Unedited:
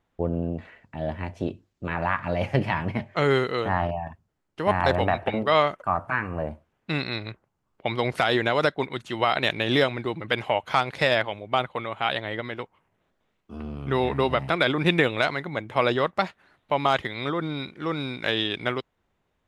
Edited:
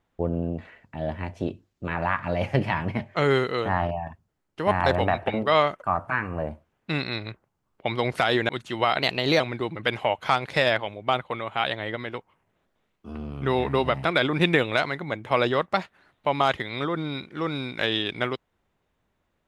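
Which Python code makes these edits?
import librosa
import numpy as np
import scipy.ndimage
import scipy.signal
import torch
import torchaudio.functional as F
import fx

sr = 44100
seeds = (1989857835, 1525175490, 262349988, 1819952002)

y = fx.edit(x, sr, fx.cut(start_s=8.49, length_s=0.4),
    fx.speed_span(start_s=9.42, length_s=0.43, speed=1.13), tone=tone)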